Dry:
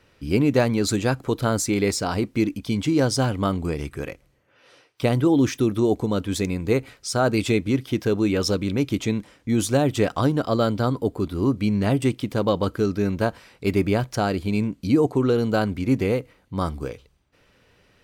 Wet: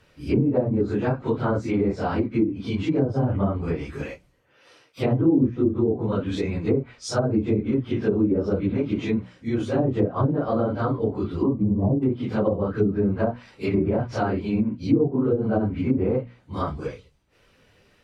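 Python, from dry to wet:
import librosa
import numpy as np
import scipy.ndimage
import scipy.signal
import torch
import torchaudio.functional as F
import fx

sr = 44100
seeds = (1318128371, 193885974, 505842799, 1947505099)

y = fx.phase_scramble(x, sr, seeds[0], window_ms=100)
y = fx.hum_notches(y, sr, base_hz=60, count=4)
y = fx.env_lowpass_down(y, sr, base_hz=420.0, full_db=-15.5)
y = fx.spec_box(y, sr, start_s=11.47, length_s=0.55, low_hz=1200.0, high_hz=8700.0, gain_db=-24)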